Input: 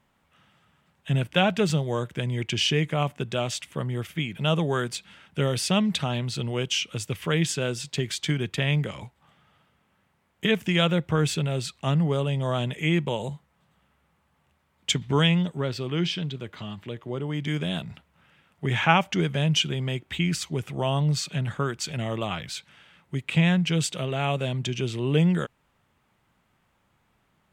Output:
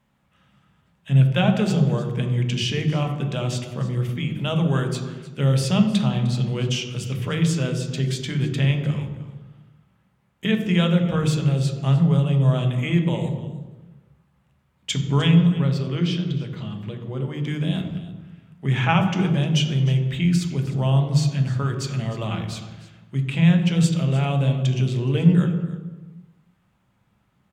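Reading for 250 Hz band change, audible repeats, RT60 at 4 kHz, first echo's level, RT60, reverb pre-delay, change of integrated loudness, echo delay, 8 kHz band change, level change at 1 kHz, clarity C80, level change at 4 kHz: +5.5 dB, 1, 0.85 s, −17.0 dB, 1.2 s, 3 ms, +4.5 dB, 305 ms, −2.0 dB, −1.0 dB, 8.5 dB, −1.5 dB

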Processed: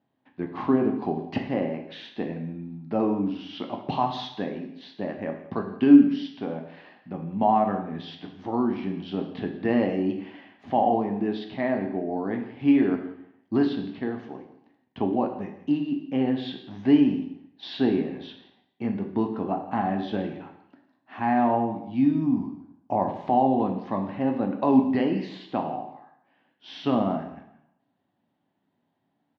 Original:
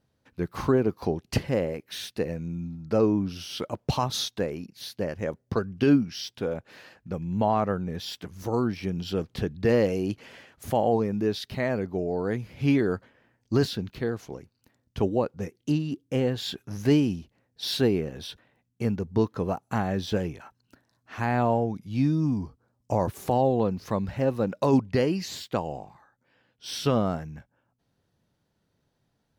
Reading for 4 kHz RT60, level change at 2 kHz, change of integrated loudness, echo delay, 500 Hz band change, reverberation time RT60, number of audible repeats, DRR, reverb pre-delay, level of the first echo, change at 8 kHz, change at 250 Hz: 0.70 s, −1.5 dB, +2.0 dB, 171 ms, −2.0 dB, 0.75 s, 1, 3.5 dB, 5 ms, −17.5 dB, below −20 dB, +4.0 dB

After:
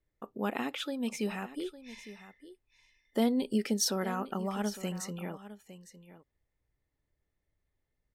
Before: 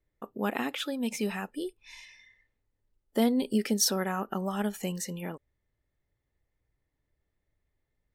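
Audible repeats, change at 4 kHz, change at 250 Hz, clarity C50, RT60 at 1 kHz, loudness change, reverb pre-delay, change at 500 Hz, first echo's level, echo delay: 1, −3.0 dB, −2.5 dB, no reverb audible, no reverb audible, −3.0 dB, no reverb audible, −2.5 dB, −15.0 dB, 857 ms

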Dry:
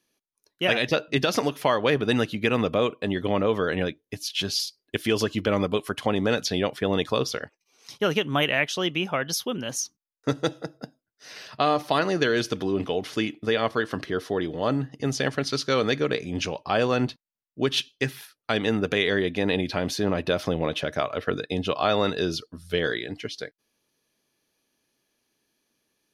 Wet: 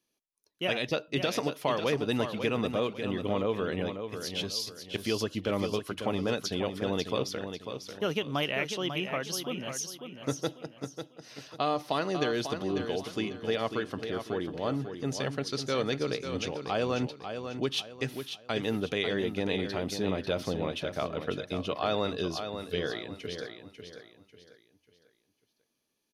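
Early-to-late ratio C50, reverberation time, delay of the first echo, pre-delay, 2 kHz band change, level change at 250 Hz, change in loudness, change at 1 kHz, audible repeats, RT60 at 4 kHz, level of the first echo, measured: no reverb audible, no reverb audible, 545 ms, no reverb audible, −8.5 dB, −6.0 dB, −6.5 dB, −6.5 dB, 3, no reverb audible, −8.0 dB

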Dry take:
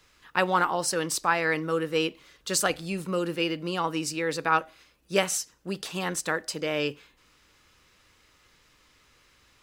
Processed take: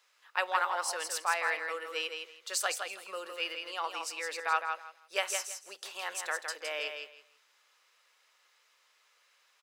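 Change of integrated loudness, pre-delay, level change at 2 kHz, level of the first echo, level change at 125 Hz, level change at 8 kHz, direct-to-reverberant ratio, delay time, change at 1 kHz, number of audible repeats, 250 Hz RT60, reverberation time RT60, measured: −6.5 dB, no reverb audible, −4.0 dB, −6.0 dB, below −40 dB, −5.5 dB, no reverb audible, 163 ms, −5.5 dB, 3, no reverb audible, no reverb audible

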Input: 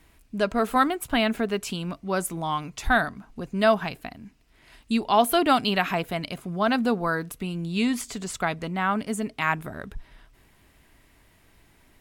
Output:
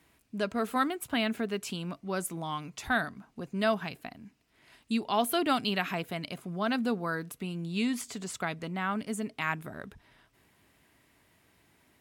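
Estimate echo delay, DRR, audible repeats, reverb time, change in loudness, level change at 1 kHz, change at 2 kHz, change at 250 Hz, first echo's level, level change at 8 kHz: no echo audible, no reverb audible, no echo audible, no reverb audible, −6.5 dB, −8.5 dB, −6.0 dB, −5.5 dB, no echo audible, −5.0 dB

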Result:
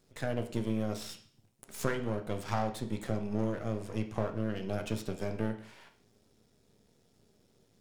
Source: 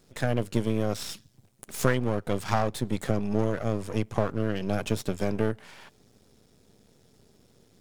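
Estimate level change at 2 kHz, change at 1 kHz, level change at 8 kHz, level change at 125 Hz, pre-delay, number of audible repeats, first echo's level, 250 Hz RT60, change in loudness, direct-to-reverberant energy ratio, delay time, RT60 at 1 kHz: −7.5 dB, −6.5 dB, −7.5 dB, −7.0 dB, 13 ms, no echo audible, no echo audible, 0.50 s, −6.5 dB, 5.5 dB, no echo audible, 0.55 s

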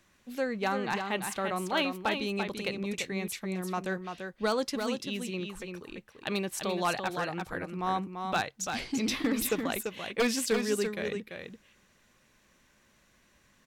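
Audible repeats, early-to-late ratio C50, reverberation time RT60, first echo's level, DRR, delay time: 1, no reverb audible, no reverb audible, −6.0 dB, no reverb audible, 340 ms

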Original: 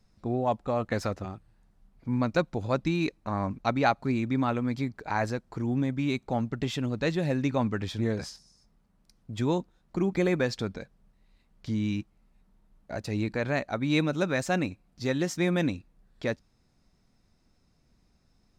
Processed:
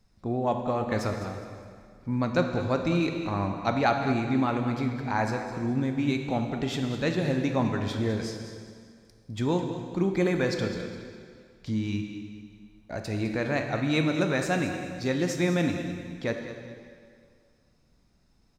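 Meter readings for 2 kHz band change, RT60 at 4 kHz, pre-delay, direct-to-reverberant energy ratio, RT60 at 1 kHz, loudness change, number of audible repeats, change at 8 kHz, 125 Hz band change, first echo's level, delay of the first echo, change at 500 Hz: +1.5 dB, 1.9 s, 6 ms, 3.5 dB, 2.1 s, +1.0 dB, 2, +1.5 dB, +1.0 dB, −12.0 dB, 206 ms, +1.5 dB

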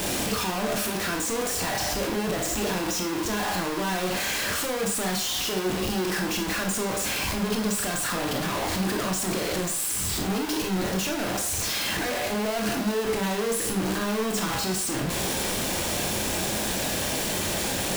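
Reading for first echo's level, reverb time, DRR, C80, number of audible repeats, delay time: no echo audible, 0.45 s, 2.0 dB, 12.0 dB, no echo audible, no echo audible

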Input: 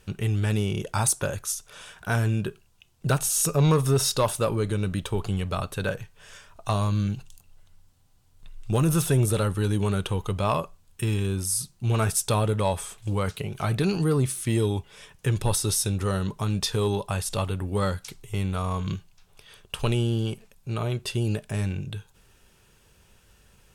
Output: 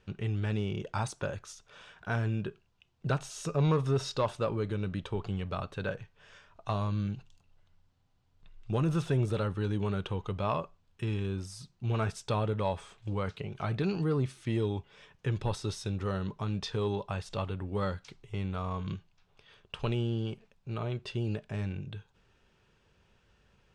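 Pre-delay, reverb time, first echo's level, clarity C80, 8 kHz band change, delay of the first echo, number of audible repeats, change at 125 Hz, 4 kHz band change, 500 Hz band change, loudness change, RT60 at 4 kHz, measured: no reverb audible, no reverb audible, no echo audible, no reverb audible, −21.0 dB, no echo audible, no echo audible, −7.0 dB, −10.0 dB, −6.0 dB, −7.5 dB, no reverb audible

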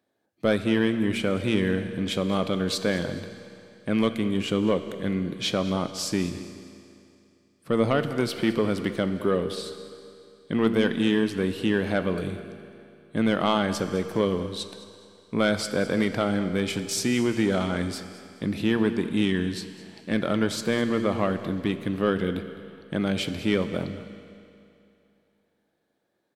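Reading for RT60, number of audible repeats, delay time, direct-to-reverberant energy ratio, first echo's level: 2.7 s, 2, 209 ms, 9.0 dB, −17.0 dB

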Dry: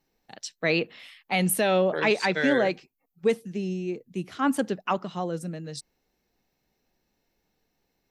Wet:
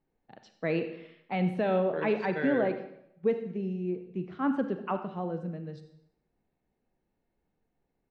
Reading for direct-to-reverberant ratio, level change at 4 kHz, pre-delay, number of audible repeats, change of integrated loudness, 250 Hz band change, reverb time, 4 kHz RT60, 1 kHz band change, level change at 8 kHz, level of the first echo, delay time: 8.0 dB, −16.0 dB, 34 ms, 1, −5.0 dB, −2.5 dB, 0.75 s, 0.70 s, −5.5 dB, below −35 dB, −17.5 dB, 94 ms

